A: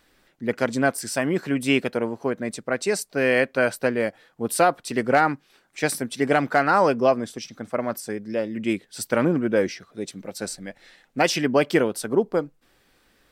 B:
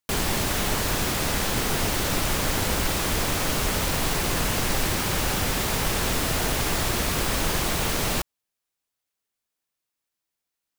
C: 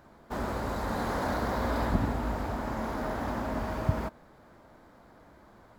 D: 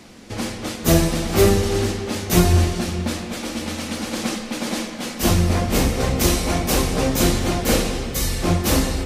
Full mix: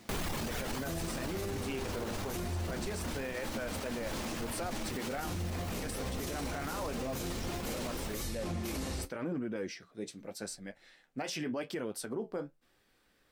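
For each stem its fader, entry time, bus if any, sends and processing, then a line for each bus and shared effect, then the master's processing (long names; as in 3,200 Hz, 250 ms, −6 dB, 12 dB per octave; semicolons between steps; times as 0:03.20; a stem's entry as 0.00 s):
−5.0 dB, 0.00 s, no send, brickwall limiter −10.5 dBFS, peak gain reduction 4 dB
−2.0 dB, 0.00 s, no send, each half-wave held at its own peak; reverb reduction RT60 1.7 s; automatic ducking −9 dB, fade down 1.75 s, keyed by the first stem
−5.5 dB, 0.75 s, no send, no processing
−7.5 dB, 0.00 s, no send, bit reduction 9 bits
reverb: not used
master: flanger 0.85 Hz, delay 8.3 ms, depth 7.2 ms, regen −53%; brickwall limiter −28.5 dBFS, peak gain reduction 14.5 dB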